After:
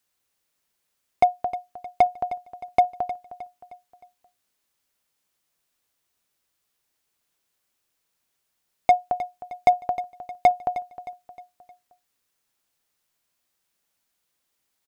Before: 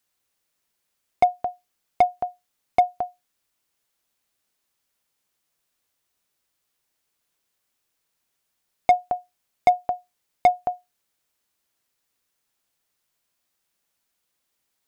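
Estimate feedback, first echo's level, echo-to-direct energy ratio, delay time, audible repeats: 45%, -14.0 dB, -13.0 dB, 310 ms, 4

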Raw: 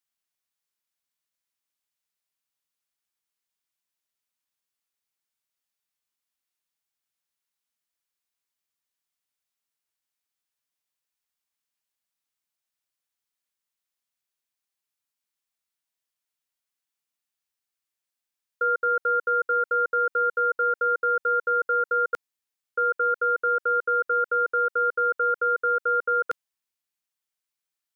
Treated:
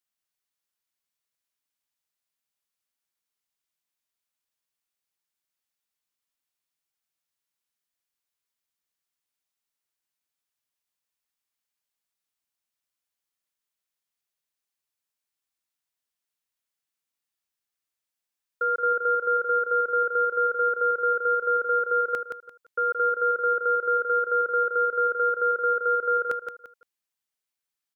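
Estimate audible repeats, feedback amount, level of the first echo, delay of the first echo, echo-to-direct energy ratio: 3, 27%, -6.5 dB, 172 ms, -6.0 dB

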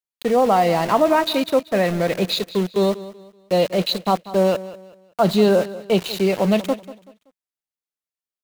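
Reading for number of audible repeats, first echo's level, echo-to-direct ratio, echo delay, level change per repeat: 2, -16.5 dB, -16.0 dB, 190 ms, -9.5 dB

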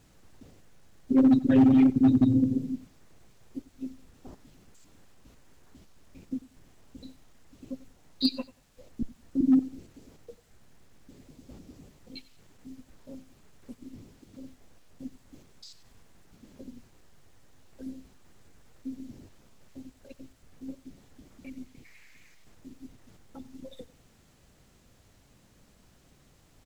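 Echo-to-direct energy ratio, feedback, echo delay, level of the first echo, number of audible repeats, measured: -20.0 dB, 24%, 92 ms, -20.0 dB, 2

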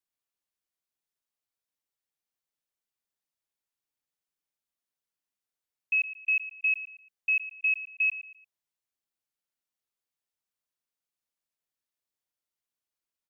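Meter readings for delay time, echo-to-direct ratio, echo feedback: 115 ms, -13.5 dB, 34%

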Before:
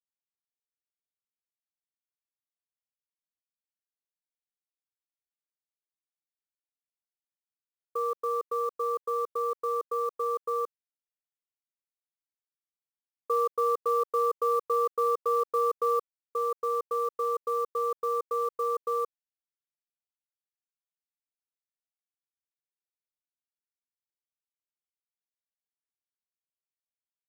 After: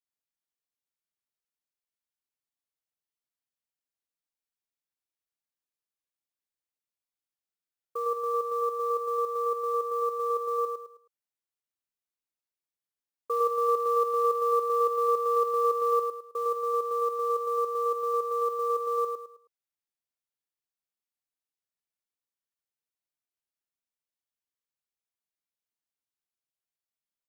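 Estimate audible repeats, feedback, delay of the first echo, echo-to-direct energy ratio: 4, 33%, 106 ms, -4.0 dB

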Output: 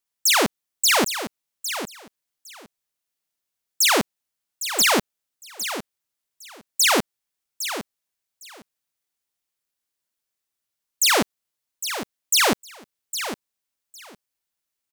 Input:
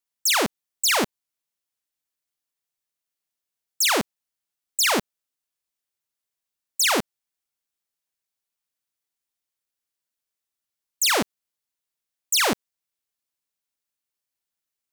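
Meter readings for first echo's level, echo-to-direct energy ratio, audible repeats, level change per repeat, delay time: -10.5 dB, -10.5 dB, 2, -16.0 dB, 808 ms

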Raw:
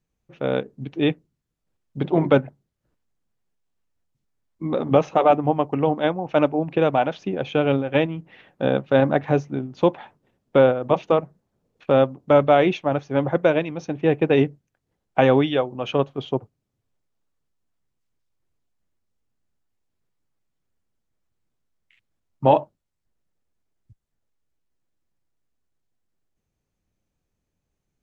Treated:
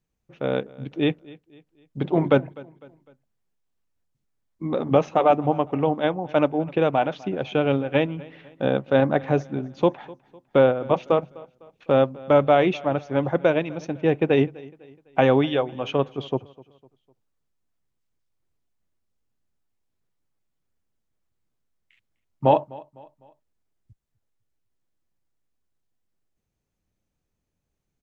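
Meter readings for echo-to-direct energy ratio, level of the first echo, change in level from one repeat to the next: -21.0 dB, -22.0 dB, -7.5 dB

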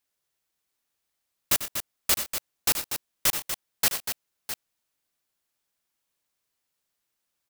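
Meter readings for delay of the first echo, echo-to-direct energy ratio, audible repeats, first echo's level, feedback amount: 94 ms, -5.5 dB, 3, -12.5 dB, no regular repeats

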